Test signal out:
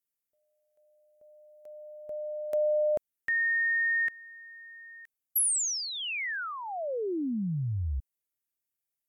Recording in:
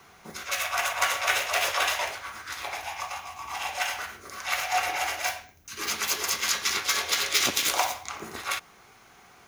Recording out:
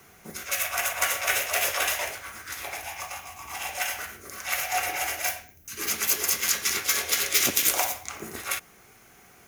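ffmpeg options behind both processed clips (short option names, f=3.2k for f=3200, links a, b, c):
-af "equalizer=f=1k:t=o:w=1:g=-8,equalizer=f=4k:t=o:w=1:g=-7,equalizer=f=16k:t=o:w=1:g=9,volume=2.5dB"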